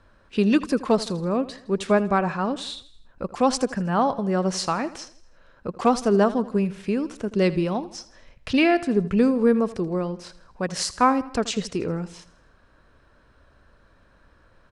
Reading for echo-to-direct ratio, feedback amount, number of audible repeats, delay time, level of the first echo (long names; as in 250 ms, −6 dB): −16.0 dB, 48%, 3, 81 ms, −17.0 dB